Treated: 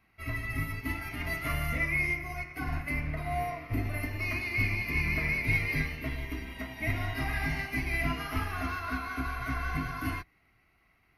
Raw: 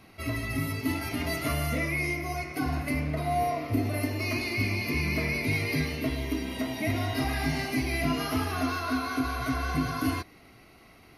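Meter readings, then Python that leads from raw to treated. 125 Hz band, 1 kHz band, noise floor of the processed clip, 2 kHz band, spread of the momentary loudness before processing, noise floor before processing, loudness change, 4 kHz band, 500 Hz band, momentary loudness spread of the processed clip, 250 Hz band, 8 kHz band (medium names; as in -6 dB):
-3.0 dB, -4.5 dB, -68 dBFS, +1.0 dB, 4 LU, -54 dBFS, -2.5 dB, -7.5 dB, -8.0 dB, 8 LU, -8.0 dB, -8.5 dB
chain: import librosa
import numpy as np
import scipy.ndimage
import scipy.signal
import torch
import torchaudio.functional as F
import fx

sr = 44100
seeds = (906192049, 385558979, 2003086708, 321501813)

y = fx.octave_divider(x, sr, octaves=2, level_db=-5.0)
y = fx.graphic_eq(y, sr, hz=(250, 500, 2000, 4000, 8000), db=(-5, -7, 6, -6, -8))
y = fx.upward_expand(y, sr, threshold_db=-50.0, expansion=1.5)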